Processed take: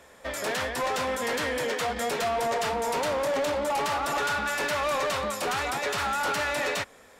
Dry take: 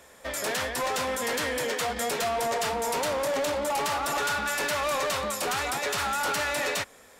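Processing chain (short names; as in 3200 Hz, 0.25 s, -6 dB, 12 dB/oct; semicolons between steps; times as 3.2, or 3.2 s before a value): high shelf 5500 Hz -7.5 dB; gain +1 dB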